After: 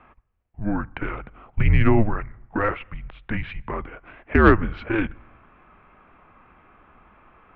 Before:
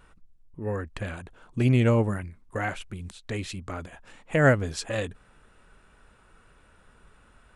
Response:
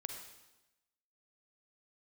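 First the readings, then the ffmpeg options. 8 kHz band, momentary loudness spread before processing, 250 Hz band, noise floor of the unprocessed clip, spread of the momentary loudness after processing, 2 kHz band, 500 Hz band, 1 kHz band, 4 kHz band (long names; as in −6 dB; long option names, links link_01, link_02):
below −25 dB, 18 LU, +5.0 dB, −59 dBFS, 19 LU, +4.5 dB, +2.0 dB, +7.5 dB, −3.0 dB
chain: -filter_complex "[0:a]asplit=2[link_01][link_02];[link_02]lowshelf=frequency=340:width_type=q:width=1.5:gain=12.5[link_03];[1:a]atrim=start_sample=2205,lowpass=3300[link_04];[link_03][link_04]afir=irnorm=-1:irlink=0,volume=-17dB[link_05];[link_01][link_05]amix=inputs=2:normalize=0,highpass=frequency=160:width_type=q:width=0.5412,highpass=frequency=160:width_type=q:width=1.307,lowpass=frequency=2900:width_type=q:width=0.5176,lowpass=frequency=2900:width_type=q:width=0.7071,lowpass=frequency=2900:width_type=q:width=1.932,afreqshift=-220,acontrast=84"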